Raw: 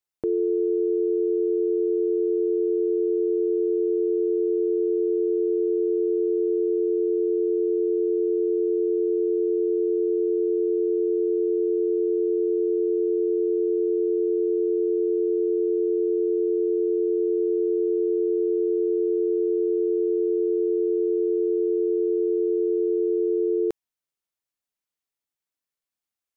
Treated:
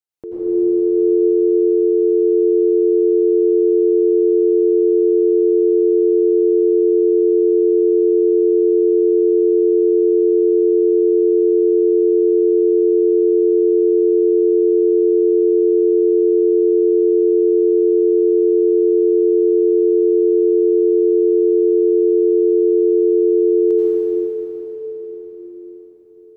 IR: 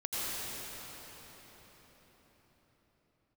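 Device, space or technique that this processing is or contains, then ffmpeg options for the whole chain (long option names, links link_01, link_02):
cathedral: -filter_complex "[0:a]bandreject=frequency=427.1:width_type=h:width=4,bandreject=frequency=854.2:width_type=h:width=4,bandreject=frequency=1281.3:width_type=h:width=4,bandreject=frequency=1708.4:width_type=h:width=4,bandreject=frequency=2135.5:width_type=h:width=4,bandreject=frequency=2562.6:width_type=h:width=4,bandreject=frequency=2989.7:width_type=h:width=4,bandreject=frequency=3416.8:width_type=h:width=4,bandreject=frequency=3843.9:width_type=h:width=4,bandreject=frequency=4271:width_type=h:width=4,bandreject=frequency=4698.1:width_type=h:width=4,bandreject=frequency=5125.2:width_type=h:width=4,bandreject=frequency=5552.3:width_type=h:width=4,bandreject=frequency=5979.4:width_type=h:width=4,bandreject=frequency=6406.5:width_type=h:width=4,bandreject=frequency=6833.6:width_type=h:width=4,bandreject=frequency=7260.7:width_type=h:width=4,bandreject=frequency=7687.8:width_type=h:width=4,bandreject=frequency=8114.9:width_type=h:width=4,bandreject=frequency=8542:width_type=h:width=4,bandreject=frequency=8969.1:width_type=h:width=4,bandreject=frequency=9396.2:width_type=h:width=4,bandreject=frequency=9823.3:width_type=h:width=4,bandreject=frequency=10250.4:width_type=h:width=4,bandreject=frequency=10677.5:width_type=h:width=4,bandreject=frequency=11104.6:width_type=h:width=4,bandreject=frequency=11531.7:width_type=h:width=4,bandreject=frequency=11958.8:width_type=h:width=4,bandreject=frequency=12385.9:width_type=h:width=4,bandreject=frequency=12813:width_type=h:width=4,bandreject=frequency=13240.1:width_type=h:width=4,bandreject=frequency=13667.2:width_type=h:width=4,bandreject=frequency=14094.3:width_type=h:width=4,bandreject=frequency=14521.4:width_type=h:width=4,bandreject=frequency=14948.5:width_type=h:width=4,bandreject=frequency=15375.6:width_type=h:width=4,bandreject=frequency=15802.7:width_type=h:width=4,bandreject=frequency=16229.8:width_type=h:width=4[link_01];[1:a]atrim=start_sample=2205[link_02];[link_01][link_02]afir=irnorm=-1:irlink=0,volume=-2dB"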